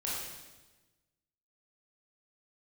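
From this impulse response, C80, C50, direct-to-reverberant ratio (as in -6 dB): 1.5 dB, -1.0 dB, -6.5 dB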